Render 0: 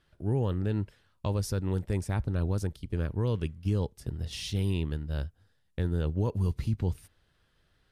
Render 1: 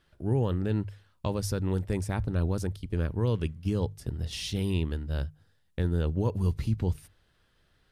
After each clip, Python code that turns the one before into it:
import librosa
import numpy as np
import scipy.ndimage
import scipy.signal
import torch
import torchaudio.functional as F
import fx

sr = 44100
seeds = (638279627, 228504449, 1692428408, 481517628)

y = fx.hum_notches(x, sr, base_hz=50, count=3)
y = y * 10.0 ** (2.0 / 20.0)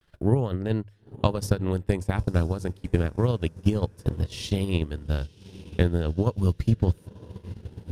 y = fx.echo_diffused(x, sr, ms=965, feedback_pct=52, wet_db=-15.0)
y = fx.transient(y, sr, attack_db=11, sustain_db=-10)
y = fx.vibrato(y, sr, rate_hz=0.33, depth_cents=39.0)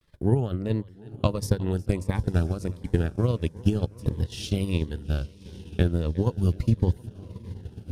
y = fx.echo_feedback(x, sr, ms=361, feedback_pct=59, wet_db=-21.5)
y = fx.notch_cascade(y, sr, direction='falling', hz=1.5)